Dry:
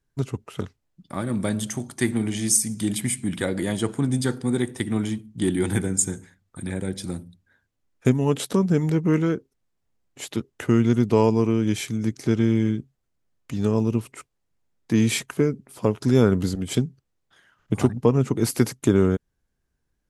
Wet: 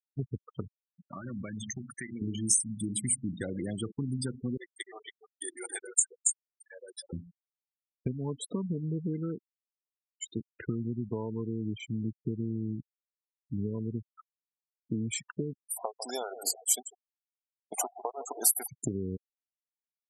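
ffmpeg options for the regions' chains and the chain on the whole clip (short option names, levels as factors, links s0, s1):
-filter_complex "[0:a]asettb=1/sr,asplit=3[s0][s1][s2];[s0]atrim=end=0.614[s3];[s1]atrim=start=0.61:end=2.22,asetpts=PTS-STARTPTS,afade=t=in:d=0.004:c=qsin,afade=t=out:st=1.606:d=0.004:c=qsin,equalizer=f=1900:w=0.75:g=11,bandreject=f=110.8:t=h:w=4,bandreject=f=221.6:t=h:w=4,bandreject=f=332.4:t=h:w=4,bandreject=f=443.2:t=h:w=4,bandreject=f=554:t=h:w=4,bandreject=f=664.8:t=h:w=4,bandreject=f=775.6:t=h:w=4,bandreject=f=886.4:t=h:w=4,bandreject=f=997.2:t=h:w=4,bandreject=f=1108:t=h:w=4,bandreject=f=1218.8:t=h:w=4,bandreject=f=1329.6:t=h:w=4,bandreject=f=1440.4:t=h:w=4,bandreject=f=1551.2:t=h:w=4,bandreject=f=1662:t=h:w=4,bandreject=f=1772.8:t=h:w=4,bandreject=f=1883.6:t=h:w=4,bandreject=f=1994.4:t=h:w=4,bandreject=f=2105.2:t=h:w=4,bandreject=f=2216:t=h:w=4,bandreject=f=2326.8:t=h:w=4,bandreject=f=2437.6:t=h:w=4,bandreject=f=2548.4:t=h:w=4,bandreject=f=2659.2:t=h:w=4,bandreject=f=2770:t=h:w=4,bandreject=f=2880.8:t=h:w=4,bandreject=f=2991.6:t=h:w=4,acompressor=threshold=0.0355:ratio=6:attack=3.2:release=140:knee=1:detection=peak[s4];[s2]atrim=start=2.216[s5];[s3][s4]acrossfade=d=0.004:c1=hsin:c2=qsin[s6];[s6][s5]acrossfade=d=0.004:c1=qsin:c2=hsin,asettb=1/sr,asplit=3[s7][s8][s9];[s7]atrim=end=4.574[s10];[s8]atrim=start=4.57:end=7.13,asetpts=PTS-STARTPTS,afade=t=in:d=0.004:c=qsin,afade=t=out:st=2.556:d=0.004:c=qsin,highpass=f=530:w=0.5412,highpass=f=530:w=1.3066,aecho=1:1:277:0.531,atrim=end_sample=112896[s11];[s9]atrim=start=7.126[s12];[s10][s11]acrossfade=d=0.004:c1=hsin:c2=qsin[s13];[s13][s12]acrossfade=d=0.004:c1=qsin:c2=hsin,asettb=1/sr,asplit=3[s14][s15][s16];[s14]atrim=end=15.534[s17];[s15]atrim=start=15.53:end=18.67,asetpts=PTS-STARTPTS,afade=t=in:d=0.004:c=qsin,afade=t=out:st=3.136:d=0.004:c=qsin,highpass=f=720:t=q:w=6.8,aemphasis=mode=production:type=75fm,aecho=1:1:149|298|447|596:0.188|0.0735|0.0287|0.0112,atrim=end_sample=138474[s18];[s16]atrim=start=18.666[s19];[s17][s18]acrossfade=d=0.004:c1=hsin:c2=qsin[s20];[s20][s19]acrossfade=d=0.004:c1=qsin:c2=hsin,acompressor=threshold=0.0631:ratio=8,afftfilt=real='re*gte(hypot(re,im),0.0501)':imag='im*gte(hypot(re,im),0.0501)':win_size=1024:overlap=0.75,bass=f=250:g=3,treble=f=4000:g=11,volume=0.447"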